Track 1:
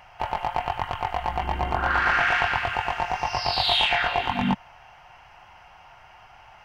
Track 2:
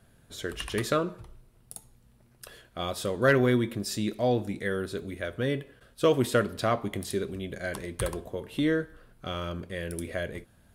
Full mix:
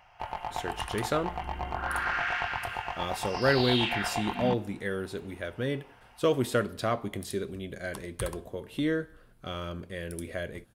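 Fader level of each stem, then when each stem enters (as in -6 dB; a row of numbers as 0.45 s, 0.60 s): -8.5 dB, -2.5 dB; 0.00 s, 0.20 s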